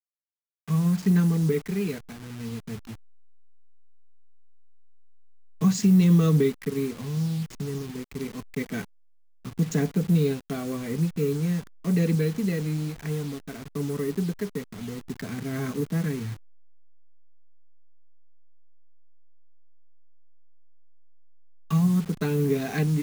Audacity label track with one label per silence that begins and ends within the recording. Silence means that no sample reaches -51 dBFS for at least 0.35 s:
8.850000	9.450000	silence